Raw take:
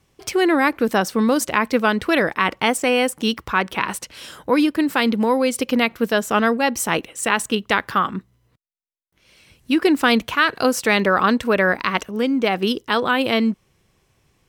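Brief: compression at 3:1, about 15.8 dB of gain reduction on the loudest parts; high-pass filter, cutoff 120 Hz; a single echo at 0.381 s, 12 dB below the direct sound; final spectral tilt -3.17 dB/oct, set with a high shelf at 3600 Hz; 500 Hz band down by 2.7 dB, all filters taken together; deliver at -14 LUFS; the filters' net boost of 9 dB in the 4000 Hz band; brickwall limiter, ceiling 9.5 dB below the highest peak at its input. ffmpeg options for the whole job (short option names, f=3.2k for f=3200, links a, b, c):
-af "highpass=120,equalizer=f=500:t=o:g=-3.5,highshelf=f=3.6k:g=7.5,equalizer=f=4k:t=o:g=7.5,acompressor=threshold=-31dB:ratio=3,alimiter=limit=-19.5dB:level=0:latency=1,aecho=1:1:381:0.251,volume=17.5dB"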